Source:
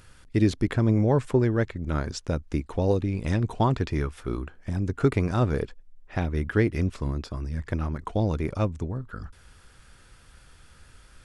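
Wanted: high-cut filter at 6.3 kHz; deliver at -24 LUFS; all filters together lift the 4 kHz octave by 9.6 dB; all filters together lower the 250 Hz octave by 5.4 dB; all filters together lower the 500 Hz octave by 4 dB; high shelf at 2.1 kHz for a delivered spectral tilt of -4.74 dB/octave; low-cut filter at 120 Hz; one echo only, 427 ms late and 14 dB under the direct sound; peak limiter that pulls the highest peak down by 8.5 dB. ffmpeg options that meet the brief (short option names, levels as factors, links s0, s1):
-af "highpass=120,lowpass=6300,equalizer=f=250:t=o:g=-6,equalizer=f=500:t=o:g=-3.5,highshelf=f=2100:g=8,equalizer=f=4000:t=o:g=5,alimiter=limit=0.133:level=0:latency=1,aecho=1:1:427:0.2,volume=2.51"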